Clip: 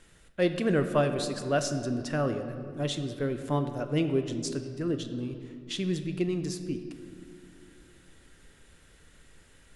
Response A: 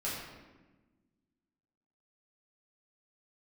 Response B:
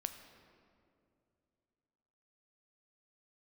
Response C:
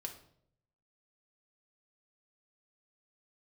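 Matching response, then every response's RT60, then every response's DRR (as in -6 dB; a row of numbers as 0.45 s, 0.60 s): B; 1.2 s, 2.6 s, 0.65 s; -8.5 dB, 7.5 dB, 3.0 dB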